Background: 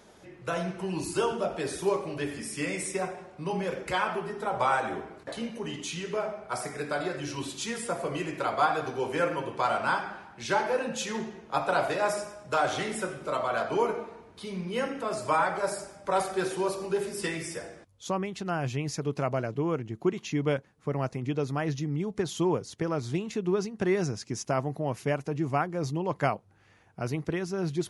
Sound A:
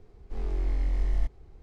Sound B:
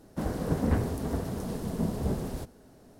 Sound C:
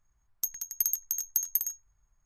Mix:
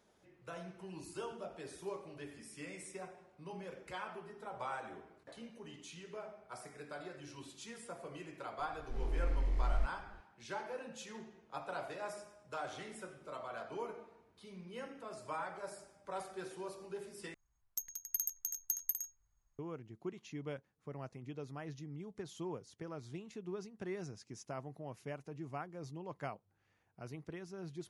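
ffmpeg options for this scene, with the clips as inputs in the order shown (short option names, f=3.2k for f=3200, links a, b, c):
-filter_complex "[0:a]volume=-16dB,asplit=2[a][b];[a]atrim=end=17.344[c];[3:a]atrim=end=2.25,asetpts=PTS-STARTPTS,volume=-8.5dB[d];[b]atrim=start=19.586[e];[1:a]atrim=end=1.62,asetpts=PTS-STARTPTS,volume=-6.5dB,afade=t=in:d=0.004:c=hsin,afade=t=out:st=1.616:d=0.004:c=hsin,adelay=8590[f];[c][d]acrossfade=d=0.004:c1=hsin:c2=hsin[g];[g][e]acrossfade=d=0.004:c1=hsin:c2=hsin[h];[h][f]amix=inputs=2:normalize=0"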